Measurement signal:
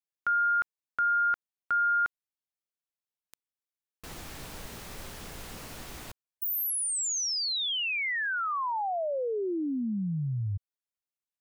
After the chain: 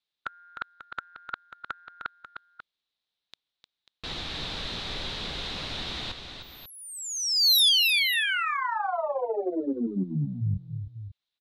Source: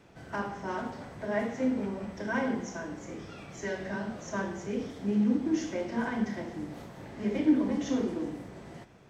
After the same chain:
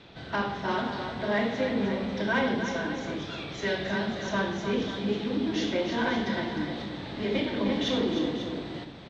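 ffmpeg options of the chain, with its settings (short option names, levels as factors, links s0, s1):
-filter_complex "[0:a]afftfilt=real='re*lt(hypot(re,im),0.398)':imag='im*lt(hypot(re,im),0.398)':win_size=1024:overlap=0.75,lowpass=f=3800:t=q:w=5.5,aeval=exprs='0.237*sin(PI/2*2*val(0)/0.237)':c=same,asplit=2[s0][s1];[s1]aecho=0:1:305|541:0.398|0.251[s2];[s0][s2]amix=inputs=2:normalize=0,volume=0.562"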